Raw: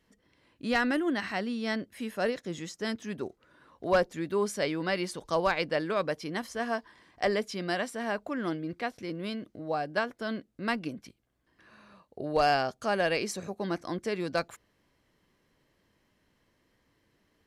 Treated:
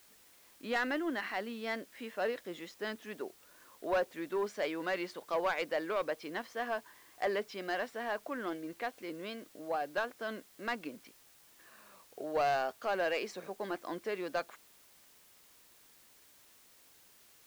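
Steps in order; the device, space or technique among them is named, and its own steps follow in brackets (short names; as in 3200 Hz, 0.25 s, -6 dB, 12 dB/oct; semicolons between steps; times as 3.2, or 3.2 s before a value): tape answering machine (BPF 360–3400 Hz; soft clip -22.5 dBFS, distortion -14 dB; wow and flutter; white noise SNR 24 dB); gain -2 dB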